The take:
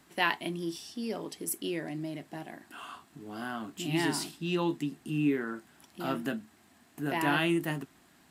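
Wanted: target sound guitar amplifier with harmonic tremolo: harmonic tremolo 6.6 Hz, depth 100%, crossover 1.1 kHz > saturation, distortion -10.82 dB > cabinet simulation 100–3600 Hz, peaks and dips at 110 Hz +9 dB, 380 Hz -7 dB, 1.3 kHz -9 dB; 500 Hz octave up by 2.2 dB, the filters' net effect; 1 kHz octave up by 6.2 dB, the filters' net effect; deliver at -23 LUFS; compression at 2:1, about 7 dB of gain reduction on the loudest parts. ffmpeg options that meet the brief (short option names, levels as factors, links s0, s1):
-filter_complex "[0:a]equalizer=f=500:t=o:g=5,equalizer=f=1000:t=o:g=8,acompressor=threshold=0.0316:ratio=2,acrossover=split=1100[s0][s1];[s0]aeval=exprs='val(0)*(1-1/2+1/2*cos(2*PI*6.6*n/s))':c=same[s2];[s1]aeval=exprs='val(0)*(1-1/2-1/2*cos(2*PI*6.6*n/s))':c=same[s3];[s2][s3]amix=inputs=2:normalize=0,asoftclip=threshold=0.0237,highpass=100,equalizer=f=110:t=q:w=4:g=9,equalizer=f=380:t=q:w=4:g=-7,equalizer=f=1300:t=q:w=4:g=-9,lowpass=f=3600:w=0.5412,lowpass=f=3600:w=1.3066,volume=11.2"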